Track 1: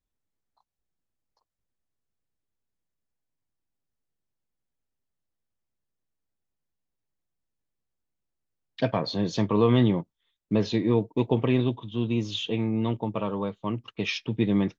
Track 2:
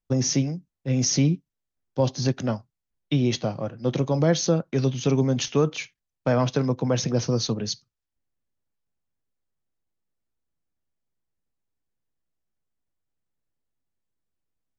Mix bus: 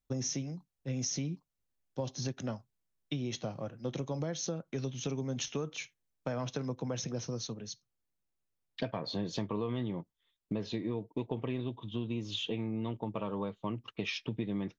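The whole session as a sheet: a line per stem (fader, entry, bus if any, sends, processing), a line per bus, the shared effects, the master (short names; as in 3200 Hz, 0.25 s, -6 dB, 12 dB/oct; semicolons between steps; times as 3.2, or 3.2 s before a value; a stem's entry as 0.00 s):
-2.5 dB, 0.00 s, no send, dry
-9.0 dB, 0.00 s, no send, high shelf 4000 Hz +6 dB; notch 4700 Hz, Q 7.4; auto duck -15 dB, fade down 1.95 s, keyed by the first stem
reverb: off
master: compressor 6:1, threshold -32 dBFS, peak gain reduction 13 dB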